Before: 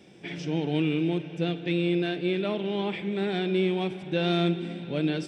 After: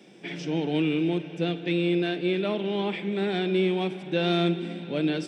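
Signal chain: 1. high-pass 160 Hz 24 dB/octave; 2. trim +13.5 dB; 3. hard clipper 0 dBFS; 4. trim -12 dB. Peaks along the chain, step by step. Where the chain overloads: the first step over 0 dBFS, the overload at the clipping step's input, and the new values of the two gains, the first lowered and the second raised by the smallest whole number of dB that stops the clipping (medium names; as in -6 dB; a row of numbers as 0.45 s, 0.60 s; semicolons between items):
-15.5 dBFS, -2.0 dBFS, -2.0 dBFS, -14.0 dBFS; nothing clips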